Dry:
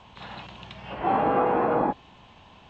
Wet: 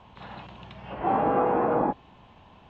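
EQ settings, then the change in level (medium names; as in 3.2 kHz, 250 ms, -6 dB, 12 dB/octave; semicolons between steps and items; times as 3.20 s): treble shelf 2.5 kHz -10.5 dB; 0.0 dB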